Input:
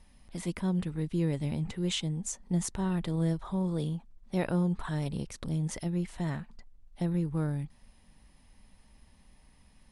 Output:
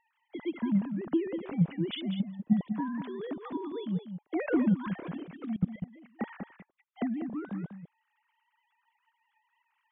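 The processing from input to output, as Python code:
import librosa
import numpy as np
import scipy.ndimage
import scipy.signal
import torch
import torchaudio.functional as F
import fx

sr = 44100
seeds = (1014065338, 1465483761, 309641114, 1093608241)

y = fx.sine_speech(x, sr)
y = fx.level_steps(y, sr, step_db=24, at=(5.56, 6.21))
y = fx.transient(y, sr, attack_db=8, sustain_db=-1)
y = y + 10.0 ** (-9.0 / 20.0) * np.pad(y, (int(195 * sr / 1000.0), 0))[:len(y)]
y = fx.band_squash(y, sr, depth_pct=100, at=(4.47, 4.87))
y = F.gain(torch.from_numpy(y), -4.5).numpy()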